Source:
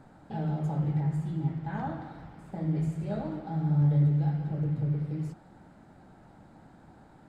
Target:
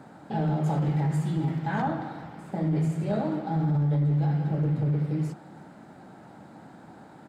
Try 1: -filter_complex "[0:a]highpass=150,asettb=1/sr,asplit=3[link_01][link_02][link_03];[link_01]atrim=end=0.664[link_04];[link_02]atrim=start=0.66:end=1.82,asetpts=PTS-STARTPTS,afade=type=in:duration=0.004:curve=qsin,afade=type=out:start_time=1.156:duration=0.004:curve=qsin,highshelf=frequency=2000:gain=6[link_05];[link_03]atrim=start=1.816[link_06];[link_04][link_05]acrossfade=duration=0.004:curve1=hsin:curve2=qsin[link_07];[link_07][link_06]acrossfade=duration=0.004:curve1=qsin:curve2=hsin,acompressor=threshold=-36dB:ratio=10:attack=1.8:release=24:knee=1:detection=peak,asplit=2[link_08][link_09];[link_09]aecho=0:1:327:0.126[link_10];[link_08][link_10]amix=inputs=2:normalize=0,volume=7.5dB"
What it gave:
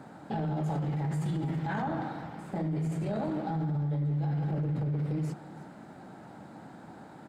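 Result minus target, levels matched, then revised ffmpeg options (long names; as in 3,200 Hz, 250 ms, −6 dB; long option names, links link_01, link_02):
downward compressor: peak gain reduction +6.5 dB; echo-to-direct +6.5 dB
-filter_complex "[0:a]highpass=150,asettb=1/sr,asplit=3[link_01][link_02][link_03];[link_01]atrim=end=0.664[link_04];[link_02]atrim=start=0.66:end=1.82,asetpts=PTS-STARTPTS,afade=type=in:duration=0.004:curve=qsin,afade=type=out:start_time=1.156:duration=0.004:curve=qsin,highshelf=frequency=2000:gain=6[link_05];[link_03]atrim=start=1.816[link_06];[link_04][link_05]acrossfade=duration=0.004:curve1=hsin:curve2=qsin[link_07];[link_07][link_06]acrossfade=duration=0.004:curve1=qsin:curve2=hsin,acompressor=threshold=-29dB:ratio=10:attack=1.8:release=24:knee=1:detection=peak,asplit=2[link_08][link_09];[link_09]aecho=0:1:327:0.0596[link_10];[link_08][link_10]amix=inputs=2:normalize=0,volume=7.5dB"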